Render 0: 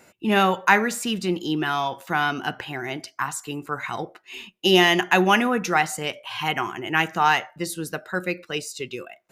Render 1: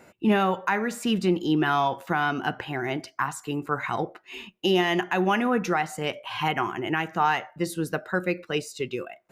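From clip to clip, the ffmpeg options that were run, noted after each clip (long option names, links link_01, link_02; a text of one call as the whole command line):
ffmpeg -i in.wav -af "highshelf=frequency=2800:gain=-10.5,alimiter=limit=-15.5dB:level=0:latency=1:release=395,highshelf=frequency=12000:gain=3.5,volume=3dB" out.wav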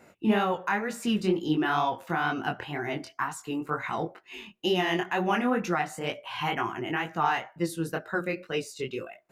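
ffmpeg -i in.wav -af "flanger=delay=17.5:depth=6.9:speed=2.1" out.wav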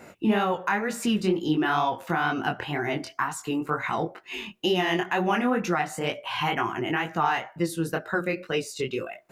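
ffmpeg -i in.wav -af "acompressor=threshold=-41dB:ratio=1.5,volume=8.5dB" out.wav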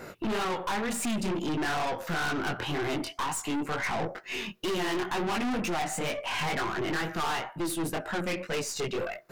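ffmpeg -i in.wav -af "afftfilt=real='re*pow(10,6/40*sin(2*PI*(0.59*log(max(b,1)*sr/1024/100)/log(2)-(-0.43)*(pts-256)/sr)))':imag='im*pow(10,6/40*sin(2*PI*(0.59*log(max(b,1)*sr/1024/100)/log(2)-(-0.43)*(pts-256)/sr)))':win_size=1024:overlap=0.75,aeval=exprs='(tanh(44.7*val(0)+0.35)-tanh(0.35))/44.7':channel_layout=same,volume=5dB" out.wav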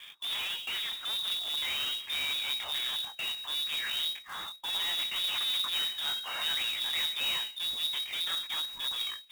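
ffmpeg -i in.wav -af "asubboost=boost=3:cutoff=170,lowpass=frequency=3200:width_type=q:width=0.5098,lowpass=frequency=3200:width_type=q:width=0.6013,lowpass=frequency=3200:width_type=q:width=0.9,lowpass=frequency=3200:width_type=q:width=2.563,afreqshift=-3800,acrusher=bits=2:mode=log:mix=0:aa=0.000001,volume=-5.5dB" out.wav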